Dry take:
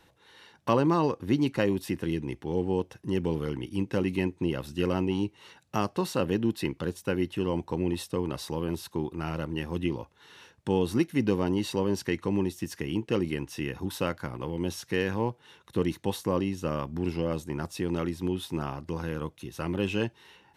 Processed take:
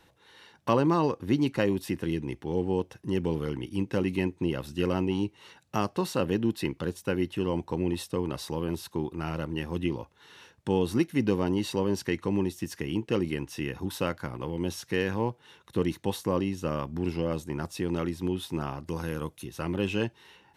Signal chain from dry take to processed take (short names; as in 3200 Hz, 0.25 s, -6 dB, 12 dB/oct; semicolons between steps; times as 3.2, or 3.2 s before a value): 18.86–19.45 bell 11000 Hz +9.5 dB 1.3 oct